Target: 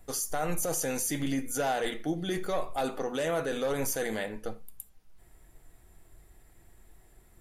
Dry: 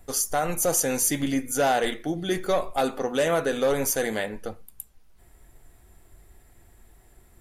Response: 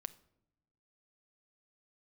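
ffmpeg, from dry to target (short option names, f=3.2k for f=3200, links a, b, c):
-filter_complex "[0:a]alimiter=limit=-19dB:level=0:latency=1:release=12[a];[1:a]atrim=start_sample=2205,atrim=end_sample=3969[b];[a][b]afir=irnorm=-1:irlink=0"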